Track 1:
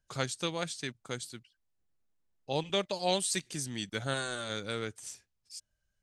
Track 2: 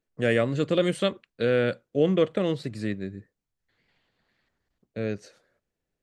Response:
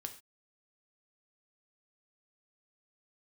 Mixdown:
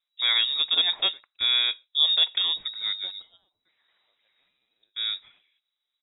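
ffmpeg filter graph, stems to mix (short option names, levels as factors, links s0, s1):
-filter_complex "[0:a]equalizer=f=680:w=0.39:g=-14.5,adelay=300,volume=0.299[s0];[1:a]volume=0.891,asplit=3[s1][s2][s3];[s2]volume=0.168[s4];[s3]apad=whole_len=278915[s5];[s0][s5]sidechaingate=range=0.0891:threshold=0.00126:ratio=16:detection=peak[s6];[2:a]atrim=start_sample=2205[s7];[s4][s7]afir=irnorm=-1:irlink=0[s8];[s6][s1][s8]amix=inputs=3:normalize=0,lowpass=f=3300:t=q:w=0.5098,lowpass=f=3300:t=q:w=0.6013,lowpass=f=3300:t=q:w=0.9,lowpass=f=3300:t=q:w=2.563,afreqshift=-3900"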